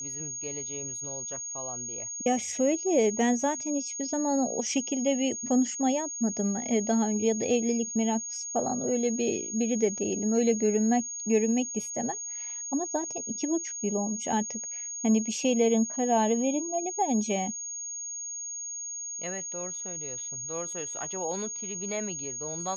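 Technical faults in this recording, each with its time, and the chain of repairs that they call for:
whistle 6,600 Hz −34 dBFS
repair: notch filter 6,600 Hz, Q 30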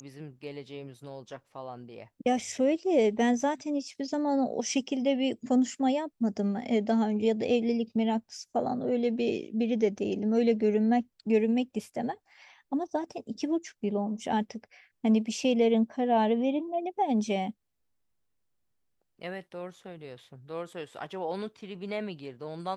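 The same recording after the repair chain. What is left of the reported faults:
none of them is left

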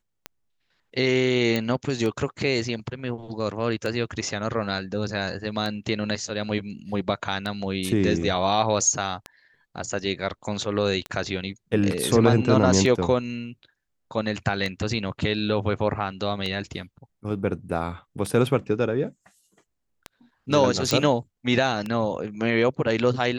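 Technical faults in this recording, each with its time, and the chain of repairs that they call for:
scratch tick 33 1/3 rpm −16 dBFS
0:01.56: click −11 dBFS
0:20.91: click −7 dBFS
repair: click removal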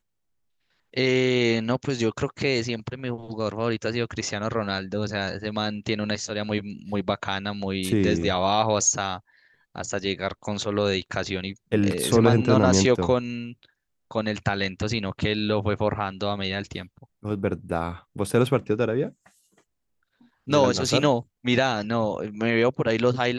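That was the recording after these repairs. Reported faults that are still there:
none of them is left

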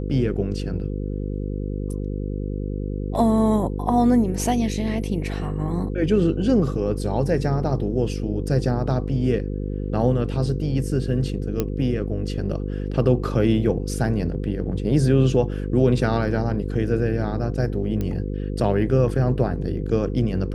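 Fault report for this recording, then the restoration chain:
mains buzz 50 Hz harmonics 10 −27 dBFS
0:11.60: click −9 dBFS
0:18.01: click −15 dBFS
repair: click removal
hum removal 50 Hz, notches 10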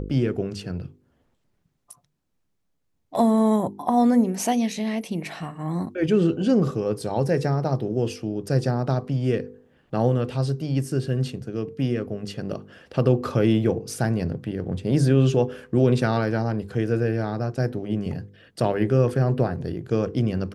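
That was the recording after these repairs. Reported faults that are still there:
none of them is left

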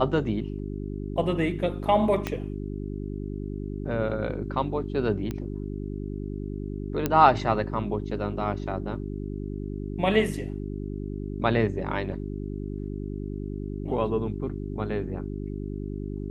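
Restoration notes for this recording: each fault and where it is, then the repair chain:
mains hum 50 Hz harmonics 8 −33 dBFS
0:02.27: click −13 dBFS
0:05.31: click −19 dBFS
0:07.06: click −10 dBFS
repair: click removal
hum removal 50 Hz, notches 8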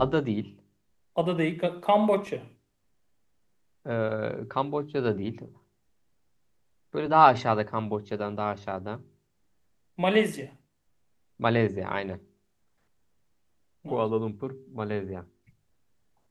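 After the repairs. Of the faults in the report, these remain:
0:02.27: click

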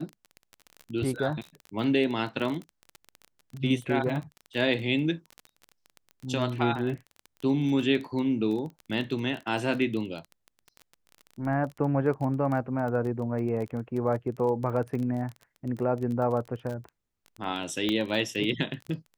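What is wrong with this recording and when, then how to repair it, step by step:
surface crackle 20 per second −33 dBFS
0:17.89: click −15 dBFS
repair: click removal

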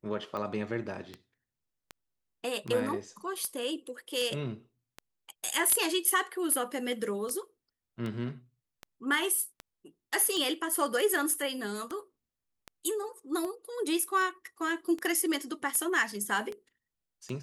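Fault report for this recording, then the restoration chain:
scratch tick 78 rpm −24 dBFS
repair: click removal

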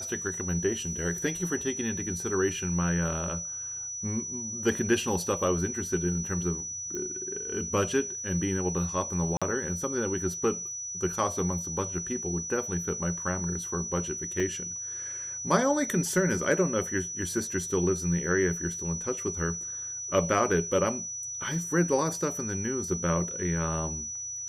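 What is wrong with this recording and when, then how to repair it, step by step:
whistle 5,900 Hz −34 dBFS
0:06.95: click −23 dBFS
0:09.37–0:09.42: drop-out 46 ms
0:14.40: drop-out 2.4 ms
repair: click removal
notch filter 5,900 Hz, Q 30
repair the gap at 0:09.37, 46 ms
repair the gap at 0:14.40, 2.4 ms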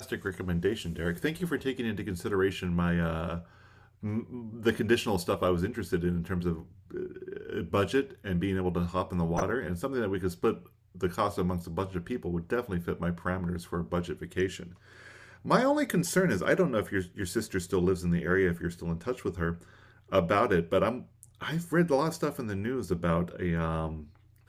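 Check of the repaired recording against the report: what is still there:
whistle 5,900 Hz

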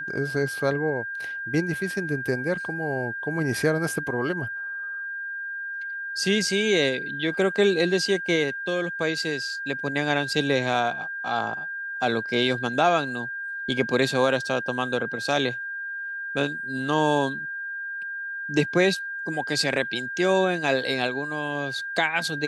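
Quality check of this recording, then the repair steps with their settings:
whistle 1,600 Hz −30 dBFS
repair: notch filter 1,600 Hz, Q 30

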